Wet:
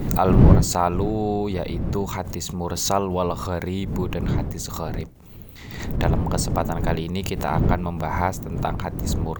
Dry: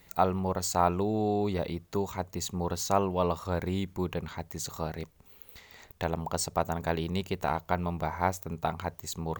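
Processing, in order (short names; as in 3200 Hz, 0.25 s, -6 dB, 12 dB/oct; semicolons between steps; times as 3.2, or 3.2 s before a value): wind noise 170 Hz -29 dBFS; backwards sustainer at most 49 dB/s; gain +4 dB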